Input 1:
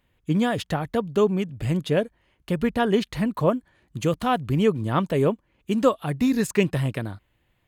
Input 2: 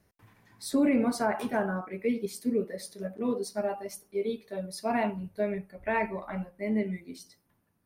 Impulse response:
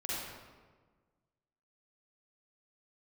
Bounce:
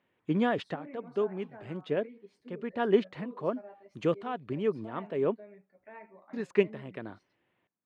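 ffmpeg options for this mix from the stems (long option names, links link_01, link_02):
-filter_complex "[0:a]equalizer=frequency=390:width_type=o:width=0.25:gain=4.5,volume=-3dB,asplit=3[link_01][link_02][link_03];[link_01]atrim=end=5.44,asetpts=PTS-STARTPTS,afade=type=out:start_time=5.436:duration=0.004:curve=hsin[link_04];[link_02]atrim=start=5.44:end=6.33,asetpts=PTS-STARTPTS,volume=0[link_05];[link_03]atrim=start=6.33,asetpts=PTS-STARTPTS,afade=type=in:duration=0.004:curve=hsin[link_06];[link_04][link_05][link_06]concat=n=3:v=0:a=1[link_07];[1:a]alimiter=limit=-22dB:level=0:latency=1:release=267,volume=-16.5dB,asplit=2[link_08][link_09];[link_09]apad=whole_len=338298[link_10];[link_07][link_10]sidechaincompress=threshold=-56dB:ratio=5:attack=41:release=354[link_11];[link_11][link_08]amix=inputs=2:normalize=0,highpass=220,lowpass=2600"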